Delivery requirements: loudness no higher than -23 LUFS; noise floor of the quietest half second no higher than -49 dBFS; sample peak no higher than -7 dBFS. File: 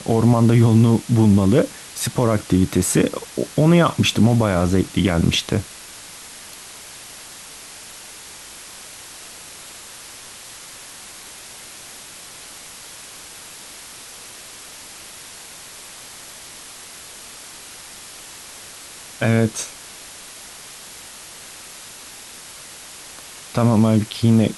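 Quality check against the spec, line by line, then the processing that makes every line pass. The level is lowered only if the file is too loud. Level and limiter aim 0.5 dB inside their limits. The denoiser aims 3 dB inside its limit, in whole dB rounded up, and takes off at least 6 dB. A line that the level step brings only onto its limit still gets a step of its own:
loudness -18.0 LUFS: fail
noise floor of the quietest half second -39 dBFS: fail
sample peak -5.0 dBFS: fail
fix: denoiser 8 dB, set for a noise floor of -39 dBFS; gain -5.5 dB

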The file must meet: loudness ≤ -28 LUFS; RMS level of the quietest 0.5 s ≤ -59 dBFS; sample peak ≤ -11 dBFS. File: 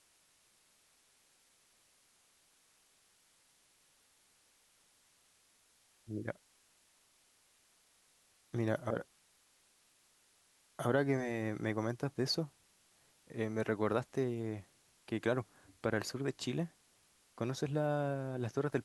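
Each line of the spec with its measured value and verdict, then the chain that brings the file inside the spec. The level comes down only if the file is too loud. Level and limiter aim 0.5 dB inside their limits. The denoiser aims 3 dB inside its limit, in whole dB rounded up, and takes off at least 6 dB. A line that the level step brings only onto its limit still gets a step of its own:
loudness -37.5 LUFS: OK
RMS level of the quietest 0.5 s -71 dBFS: OK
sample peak -17.5 dBFS: OK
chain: none

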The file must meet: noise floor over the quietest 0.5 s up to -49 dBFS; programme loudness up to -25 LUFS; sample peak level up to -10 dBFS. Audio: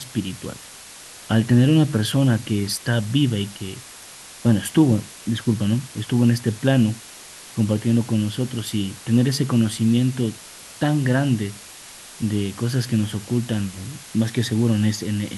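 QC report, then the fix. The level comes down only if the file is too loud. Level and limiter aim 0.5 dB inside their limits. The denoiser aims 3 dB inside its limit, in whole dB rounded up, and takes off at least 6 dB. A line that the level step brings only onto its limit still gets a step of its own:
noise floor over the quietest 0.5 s -41 dBFS: fail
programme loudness -21.5 LUFS: fail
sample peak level -5.0 dBFS: fail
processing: denoiser 7 dB, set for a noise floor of -41 dBFS; gain -4 dB; limiter -10.5 dBFS

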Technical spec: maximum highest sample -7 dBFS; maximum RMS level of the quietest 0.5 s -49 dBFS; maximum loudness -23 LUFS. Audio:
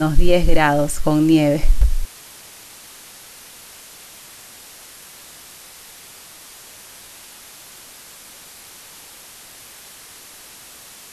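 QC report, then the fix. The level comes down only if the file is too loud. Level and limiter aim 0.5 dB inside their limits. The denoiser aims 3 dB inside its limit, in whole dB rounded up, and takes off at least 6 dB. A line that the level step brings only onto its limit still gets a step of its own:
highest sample -2.0 dBFS: fail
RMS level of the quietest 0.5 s -42 dBFS: fail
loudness -17.5 LUFS: fail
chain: denoiser 6 dB, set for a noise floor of -42 dBFS; gain -6 dB

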